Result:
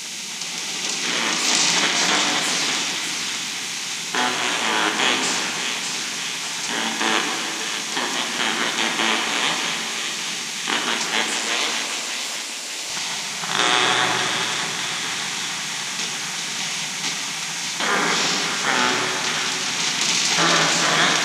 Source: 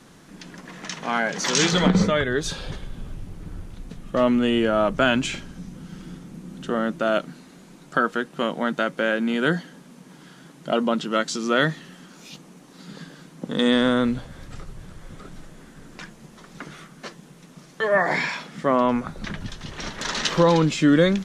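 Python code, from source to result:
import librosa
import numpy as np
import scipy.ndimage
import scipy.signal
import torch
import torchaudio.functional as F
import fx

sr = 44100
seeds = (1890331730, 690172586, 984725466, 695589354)

y = fx.bin_compress(x, sr, power=0.4)
y = fx.highpass(y, sr, hz=fx.steps((0.0, 570.0), (11.35, 1300.0), (12.9, 410.0)), slope=12)
y = fx.spec_gate(y, sr, threshold_db=-10, keep='weak')
y = fx.high_shelf(y, sr, hz=7500.0, db=8.0)
y = fx.echo_wet_highpass(y, sr, ms=599, feedback_pct=59, hz=1700.0, wet_db=-6.0)
y = fx.room_shoebox(y, sr, seeds[0], volume_m3=170.0, walls='hard', distance_m=0.39)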